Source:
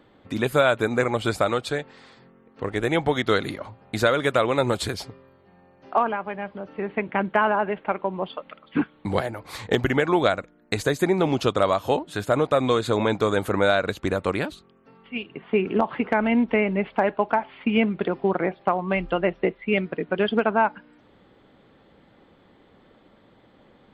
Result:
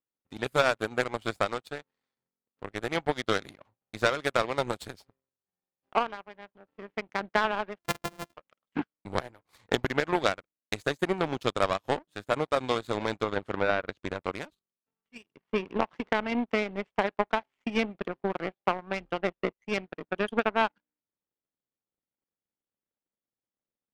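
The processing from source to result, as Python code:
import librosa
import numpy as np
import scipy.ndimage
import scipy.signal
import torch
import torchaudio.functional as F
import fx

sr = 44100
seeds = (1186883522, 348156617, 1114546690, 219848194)

y = fx.sample_sort(x, sr, block=128, at=(7.78, 8.33), fade=0.02)
y = fx.power_curve(y, sr, exponent=2.0)
y = fx.env_lowpass_down(y, sr, base_hz=2400.0, full_db=-24.0, at=(13.14, 14.32))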